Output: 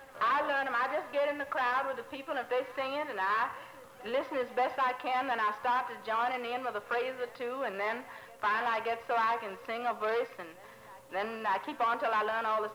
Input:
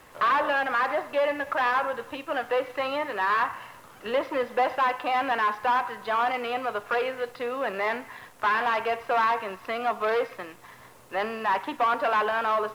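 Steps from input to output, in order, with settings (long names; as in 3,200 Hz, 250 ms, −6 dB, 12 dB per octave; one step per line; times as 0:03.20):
backwards echo 583 ms −22.5 dB
steady tone 540 Hz −51 dBFS
level −6 dB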